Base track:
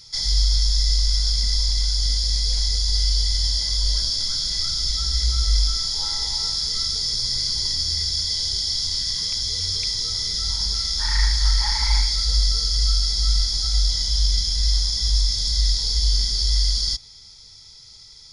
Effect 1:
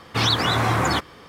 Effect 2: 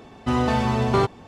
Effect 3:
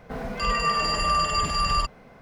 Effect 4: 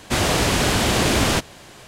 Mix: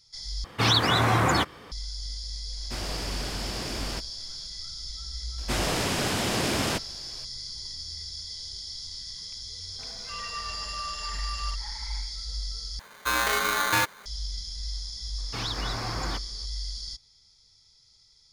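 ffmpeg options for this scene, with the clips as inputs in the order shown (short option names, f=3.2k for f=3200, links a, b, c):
-filter_complex "[1:a]asplit=2[a][b];[4:a]asplit=2[c][d];[0:a]volume=-14.5dB[e];[d]highpass=84[f];[3:a]tiltshelf=f=690:g=-6.5[g];[2:a]aeval=exprs='val(0)*sgn(sin(2*PI*1300*n/s))':c=same[h];[e]asplit=3[i][j][k];[i]atrim=end=0.444[l];[a]atrim=end=1.28,asetpts=PTS-STARTPTS,volume=-1.5dB[m];[j]atrim=start=1.716:end=12.794[n];[h]atrim=end=1.27,asetpts=PTS-STARTPTS,volume=-4.5dB[o];[k]atrim=start=14.056[p];[c]atrim=end=1.87,asetpts=PTS-STARTPTS,volume=-16.5dB,afade=t=in:d=0.004:c=hsin,afade=t=out:st=1.866:d=0.004:c=hsin,adelay=2600[q];[f]atrim=end=1.87,asetpts=PTS-STARTPTS,volume=-8dB,afade=t=in:d=0.004:c=hsin,afade=t=out:st=1.866:d=0.004:c=hsin,adelay=5380[r];[g]atrim=end=2.21,asetpts=PTS-STARTPTS,volume=-16.5dB,afade=t=in:d=0.004:c=hsin,afade=t=out:st=2.206:d=0.004:c=hsin,adelay=9690[s];[b]atrim=end=1.28,asetpts=PTS-STARTPTS,volume=-13dB,afade=t=in:d=0.004:c=hsin,afade=t=out:st=1.276:d=0.004:c=hsin,adelay=15180[t];[l][m]acrossfade=d=0.004:c1=hsin:c2=hsin[u];[u][n]acrossfade=d=0.004:c1=hsin:c2=hsin[v];[v][o]acrossfade=d=0.004:c1=hsin:c2=hsin[w];[w][p]acrossfade=d=0.004:c1=hsin:c2=hsin[x];[x][q][r][s][t]amix=inputs=5:normalize=0"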